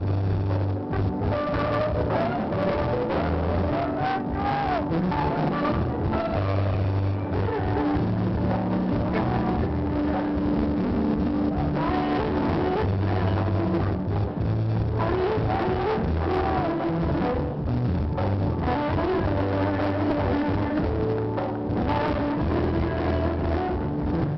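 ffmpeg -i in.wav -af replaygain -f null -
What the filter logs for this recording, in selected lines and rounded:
track_gain = +8.8 dB
track_peak = 0.120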